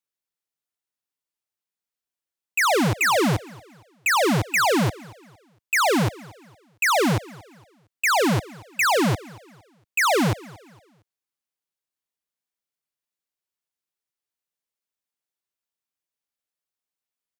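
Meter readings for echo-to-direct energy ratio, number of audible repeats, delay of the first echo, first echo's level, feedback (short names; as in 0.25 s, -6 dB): -21.5 dB, 2, 0.23 s, -22.0 dB, 37%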